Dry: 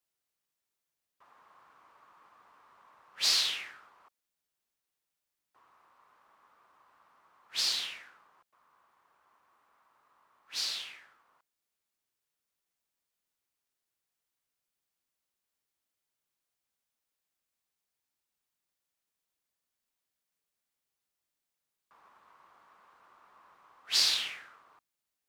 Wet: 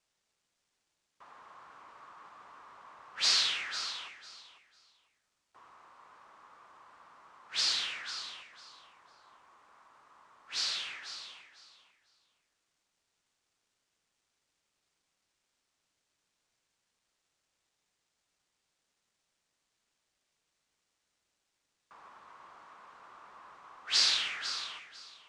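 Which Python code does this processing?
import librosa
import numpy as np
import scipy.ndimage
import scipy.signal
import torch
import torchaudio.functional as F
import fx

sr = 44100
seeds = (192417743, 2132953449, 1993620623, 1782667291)

y = fx.law_mismatch(x, sr, coded='mu')
y = scipy.signal.sosfilt(scipy.signal.butter(4, 8100.0, 'lowpass', fs=sr, output='sos'), y)
y = fx.echo_feedback(y, sr, ms=499, feedback_pct=20, wet_db=-11)
y = fx.dynamic_eq(y, sr, hz=1400.0, q=1.7, threshold_db=-52.0, ratio=4.0, max_db=5)
y = y * librosa.db_to_amplitude(-1.0)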